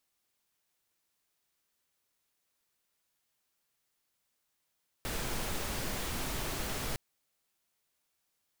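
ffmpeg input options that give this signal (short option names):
-f lavfi -i "anoisesrc=c=pink:a=0.0861:d=1.91:r=44100:seed=1"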